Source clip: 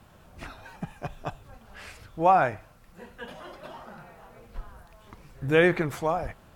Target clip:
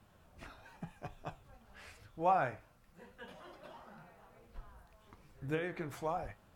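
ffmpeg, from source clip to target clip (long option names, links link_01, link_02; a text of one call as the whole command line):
ffmpeg -i in.wav -filter_complex "[0:a]asettb=1/sr,asplit=3[link_01][link_02][link_03];[link_01]atrim=end=5.544[link_04];[link_02]atrim=start=5.54:end=6,asetpts=PTS-STARTPTS,afade=type=in:duration=0.004:curve=qsin,afade=type=out:start_time=0.456:duration=0.004:curve=qsin,acompressor=threshold=-25dB:ratio=5[link_05];[link_03]atrim=start=5.996[link_06];[link_04][link_05]acrossfade=duration=0.004:curve1=hsin:curve2=qsin[link_07];[link_07][link_06]acrossfade=duration=0.004:curve1=qsin:curve2=hsin,flanger=delay=9.5:depth=7.7:regen=67:speed=0.94:shape=sinusoidal,volume=-6dB" out.wav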